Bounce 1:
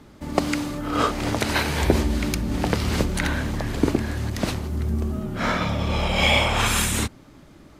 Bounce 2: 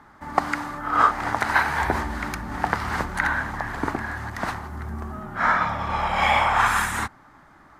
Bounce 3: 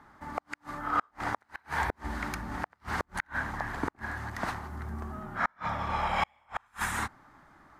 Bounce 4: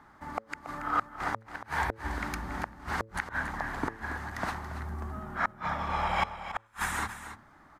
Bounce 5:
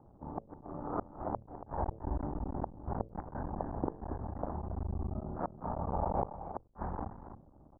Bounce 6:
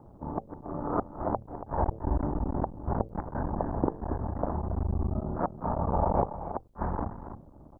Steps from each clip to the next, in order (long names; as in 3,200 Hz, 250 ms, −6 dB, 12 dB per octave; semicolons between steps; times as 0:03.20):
flat-topped bell 1,200 Hz +15.5 dB; level −8.5 dB
gate with flip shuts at −10 dBFS, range −40 dB; level −5.5 dB
hum removal 111.2 Hz, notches 5; on a send: single-tap delay 280 ms −11.5 dB
sub-harmonics by changed cycles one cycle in 3, muted; slack as between gear wheels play −52.5 dBFS; inverse Chebyshev low-pass filter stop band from 3,400 Hz, stop band 70 dB; level +3 dB
notch filter 780 Hz, Q 19; level +7.5 dB